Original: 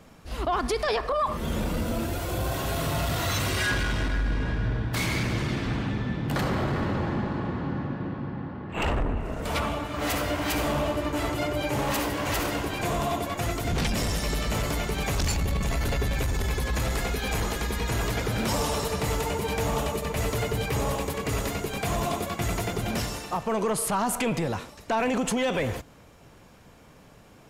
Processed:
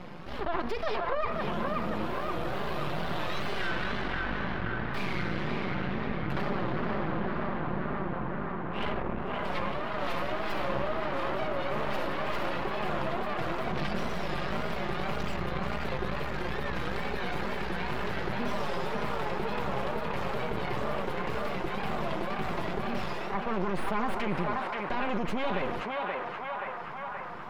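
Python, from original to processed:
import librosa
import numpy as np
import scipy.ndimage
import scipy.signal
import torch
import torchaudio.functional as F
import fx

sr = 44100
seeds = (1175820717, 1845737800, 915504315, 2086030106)

p1 = scipy.signal.sosfilt(scipy.signal.butter(2, 88.0, 'highpass', fs=sr, output='sos'), x)
p2 = fx.bass_treble(p1, sr, bass_db=-3, treble_db=9)
p3 = p2 + 0.68 * np.pad(p2, (int(5.3 * sr / 1000.0), 0))[:len(p2)]
p4 = fx.wow_flutter(p3, sr, seeds[0], rate_hz=2.1, depth_cents=140.0)
p5 = np.maximum(p4, 0.0)
p6 = fx.air_absorb(p5, sr, metres=390.0)
p7 = p6 + fx.echo_banded(p6, sr, ms=528, feedback_pct=67, hz=1200.0, wet_db=-3, dry=0)
p8 = fx.env_flatten(p7, sr, amount_pct=50)
y = p8 * librosa.db_to_amplitude(-2.5)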